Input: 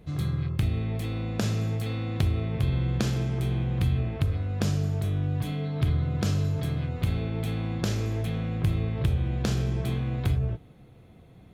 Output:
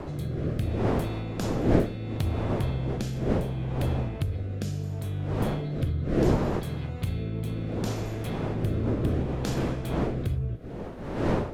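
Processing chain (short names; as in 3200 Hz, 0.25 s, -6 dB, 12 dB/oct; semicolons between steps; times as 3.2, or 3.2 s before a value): wind noise 450 Hz -24 dBFS; in parallel at -1 dB: compressor, threshold -27 dBFS, peak gain reduction 18.5 dB; on the sum: rotary speaker horn 0.7 Hz; high shelf 7700 Hz +7 dB; gain -6 dB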